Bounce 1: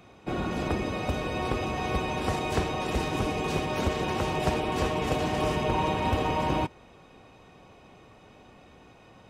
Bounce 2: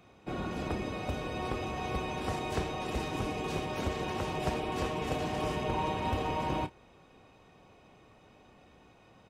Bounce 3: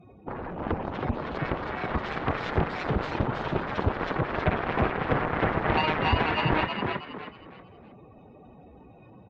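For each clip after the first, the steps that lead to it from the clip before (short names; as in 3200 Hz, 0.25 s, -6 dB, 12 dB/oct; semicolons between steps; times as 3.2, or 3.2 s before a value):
doubler 30 ms -13 dB; gain -6 dB
spectral contrast raised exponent 2.5; added harmonics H 7 -11 dB, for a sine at -20.5 dBFS; frequency-shifting echo 0.32 s, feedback 32%, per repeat +60 Hz, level -4 dB; gain +7.5 dB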